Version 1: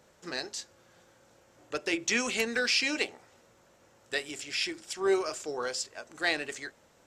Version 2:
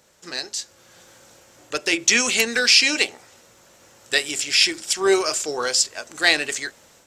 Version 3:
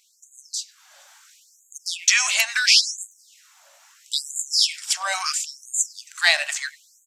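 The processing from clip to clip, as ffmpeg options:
ffmpeg -i in.wav -af "highshelf=frequency=2500:gain=10,dynaudnorm=framelen=580:gausssize=3:maxgain=11.5dB" out.wav
ffmpeg -i in.wav -filter_complex "[0:a]asplit=2[link_01][link_02];[link_02]adelay=100,highpass=300,lowpass=3400,asoftclip=type=hard:threshold=-10dB,volume=-17dB[link_03];[link_01][link_03]amix=inputs=2:normalize=0,afftfilt=real='re*gte(b*sr/1024,530*pow(6500/530,0.5+0.5*sin(2*PI*0.74*pts/sr)))':imag='im*gte(b*sr/1024,530*pow(6500/530,0.5+0.5*sin(2*PI*0.74*pts/sr)))':win_size=1024:overlap=0.75" out.wav

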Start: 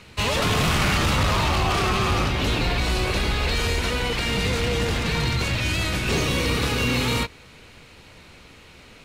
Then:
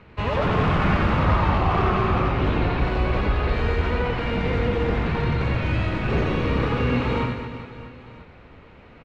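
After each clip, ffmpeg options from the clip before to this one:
ffmpeg -i in.wav -filter_complex "[0:a]lowpass=1600,asplit=2[link_01][link_02];[link_02]aecho=0:1:90|216|392.4|639.4|985.1:0.631|0.398|0.251|0.158|0.1[link_03];[link_01][link_03]amix=inputs=2:normalize=0" out.wav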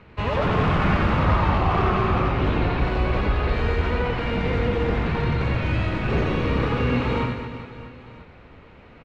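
ffmpeg -i in.wav -af anull out.wav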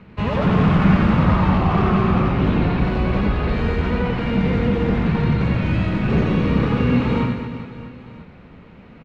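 ffmpeg -i in.wav -af "equalizer=frequency=190:width=1.5:gain=11" out.wav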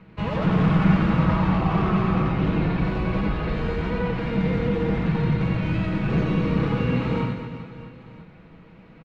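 ffmpeg -i in.wav -af "aecho=1:1:6.2:0.42,volume=-5dB" out.wav

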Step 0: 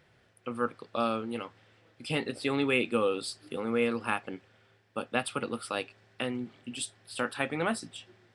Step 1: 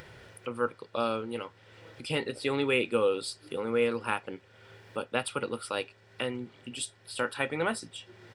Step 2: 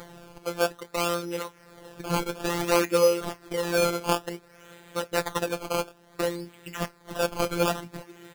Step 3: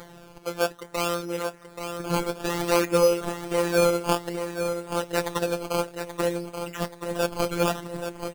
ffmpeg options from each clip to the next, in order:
ffmpeg -i in.wav -af "aecho=1:1:2.1:0.33,acompressor=mode=upward:threshold=-38dB:ratio=2.5" out.wav
ffmpeg -i in.wav -af "acrusher=samples=16:mix=1:aa=0.000001:lfo=1:lforange=16:lforate=0.57,afftfilt=real='hypot(re,im)*cos(PI*b)':imag='0':win_size=1024:overlap=0.75,volume=8dB" out.wav
ffmpeg -i in.wav -af "aecho=1:1:830|1660|2490|3320|4150:0.376|0.18|0.0866|0.0416|0.02" out.wav

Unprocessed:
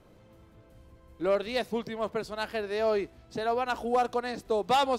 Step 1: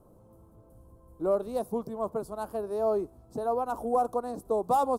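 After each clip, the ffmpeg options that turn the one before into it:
ffmpeg -i in.wav -af "firequalizer=gain_entry='entry(1100,0);entry(1900,-26);entry(9500,4)':delay=0.05:min_phase=1" out.wav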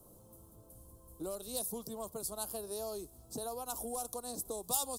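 ffmpeg -i in.wav -filter_complex "[0:a]acrossover=split=110|2400[link_01][link_02][link_03];[link_02]acompressor=threshold=-37dB:ratio=6[link_04];[link_01][link_04][link_03]amix=inputs=3:normalize=0,aexciter=amount=6.2:drive=3.7:freq=3000,volume=-3dB" out.wav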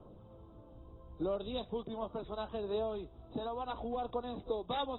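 ffmpeg -i in.wav -af "asoftclip=type=hard:threshold=-27dB,aphaser=in_gain=1:out_gain=1:delay=3.5:decay=0.31:speed=0.73:type=sinusoidal,volume=3.5dB" -ar 22050 -c:a aac -b:a 16k out.aac

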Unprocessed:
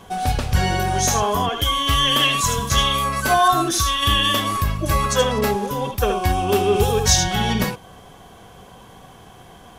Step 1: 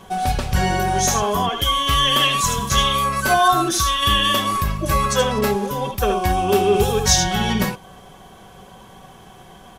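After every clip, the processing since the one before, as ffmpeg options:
ffmpeg -i in.wav -af "aecho=1:1:5.3:0.31" out.wav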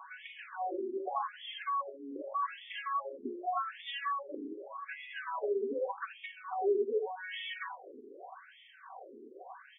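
ffmpeg -i in.wav -af "acompressor=threshold=-27dB:ratio=5,bass=frequency=250:gain=8,treble=frequency=4000:gain=-14,afftfilt=real='re*between(b*sr/1024,330*pow(2600/330,0.5+0.5*sin(2*PI*0.84*pts/sr))/1.41,330*pow(2600/330,0.5+0.5*sin(2*PI*0.84*pts/sr))*1.41)':imag='im*between(b*sr/1024,330*pow(2600/330,0.5+0.5*sin(2*PI*0.84*pts/sr))/1.41,330*pow(2600/330,0.5+0.5*sin(2*PI*0.84*pts/sr))*1.41)':win_size=1024:overlap=0.75" out.wav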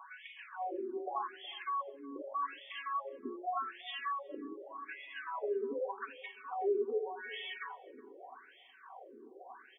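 ffmpeg -i in.wav -filter_complex "[0:a]asplit=2[link_01][link_02];[link_02]adelay=368,lowpass=frequency=930:poles=1,volume=-17.5dB,asplit=2[link_03][link_04];[link_04]adelay=368,lowpass=frequency=930:poles=1,volume=0.24[link_05];[link_01][link_03][link_05]amix=inputs=3:normalize=0,volume=-2.5dB" out.wav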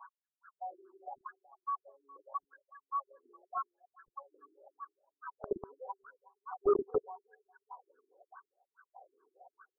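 ffmpeg -i in.wav -filter_complex "[0:a]acrossover=split=720[link_01][link_02];[link_01]acrusher=bits=4:mix=0:aa=0.000001[link_03];[link_02]volume=31dB,asoftclip=hard,volume=-31dB[link_04];[link_03][link_04]amix=inputs=2:normalize=0,afftfilt=real='re*lt(b*sr/1024,370*pow(1700/370,0.5+0.5*sin(2*PI*4.8*pts/sr)))':imag='im*lt(b*sr/1024,370*pow(1700/370,0.5+0.5*sin(2*PI*4.8*pts/sr)))':win_size=1024:overlap=0.75,volume=3dB" out.wav

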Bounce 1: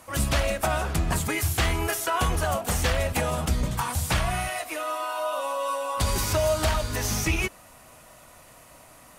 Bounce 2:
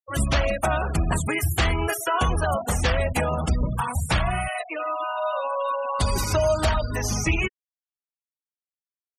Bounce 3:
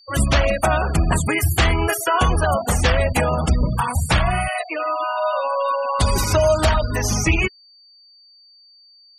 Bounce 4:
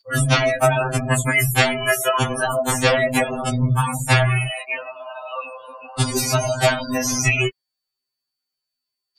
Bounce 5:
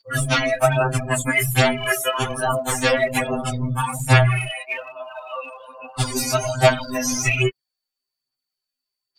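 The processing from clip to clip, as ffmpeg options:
ffmpeg -i in.wav -af "afftfilt=real='re*gte(hypot(re,im),0.0355)':imag='im*gte(hypot(re,im),0.0355)':win_size=1024:overlap=0.75,volume=2.5dB" out.wav
ffmpeg -i in.wav -af "aeval=exprs='val(0)+0.00224*sin(2*PI*4600*n/s)':channel_layout=same,volume=5dB" out.wav
ffmpeg -i in.wav -af "afftfilt=real='re*2.45*eq(mod(b,6),0)':imag='im*2.45*eq(mod(b,6),0)':win_size=2048:overlap=0.75,volume=4dB" out.wav
ffmpeg -i in.wav -af "aphaser=in_gain=1:out_gain=1:delay=3.7:decay=0.52:speed=1.2:type=sinusoidal,volume=-3dB" out.wav

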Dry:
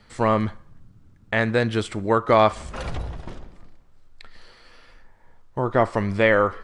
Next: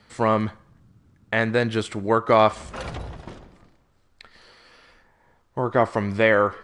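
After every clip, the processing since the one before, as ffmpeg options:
ffmpeg -i in.wav -af "highpass=frequency=90:poles=1" out.wav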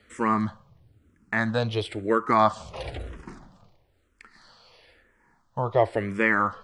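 ffmpeg -i in.wav -filter_complex "[0:a]asplit=2[link_01][link_02];[link_02]afreqshift=-1[link_03];[link_01][link_03]amix=inputs=2:normalize=1" out.wav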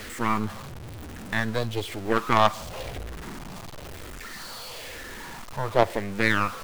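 ffmpeg -i in.wav -af "aeval=exprs='val(0)+0.5*0.0596*sgn(val(0))':channel_layout=same,aeval=exprs='0.447*(cos(1*acos(clip(val(0)/0.447,-1,1)))-cos(1*PI/2))+0.112*(cos(3*acos(clip(val(0)/0.447,-1,1)))-cos(3*PI/2))+0.0282*(cos(6*acos(clip(val(0)/0.447,-1,1)))-cos(6*PI/2))':channel_layout=same,volume=3dB" out.wav

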